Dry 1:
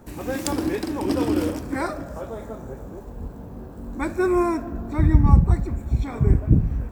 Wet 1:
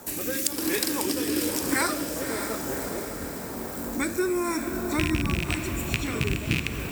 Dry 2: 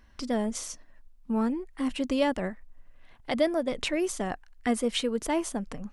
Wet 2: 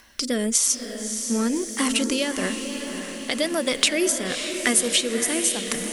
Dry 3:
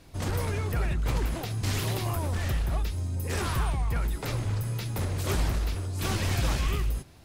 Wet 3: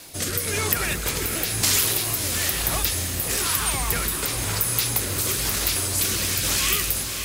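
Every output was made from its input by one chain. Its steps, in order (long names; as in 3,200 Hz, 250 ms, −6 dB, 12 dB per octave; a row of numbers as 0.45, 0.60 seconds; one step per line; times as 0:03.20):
loose part that buzzes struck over −16 dBFS, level −15 dBFS
RIAA equalisation recording
hum removal 66.51 Hz, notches 8
dynamic equaliser 730 Hz, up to −7 dB, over −45 dBFS, Q 1.6
downward compressor 4 to 1, threshold −31 dBFS
rotating-speaker cabinet horn 1 Hz
feedback delay with all-pass diffusion 584 ms, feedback 60%, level −7.5 dB
normalise the peak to −1.5 dBFS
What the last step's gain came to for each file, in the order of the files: +9.5, +14.0, +13.5 decibels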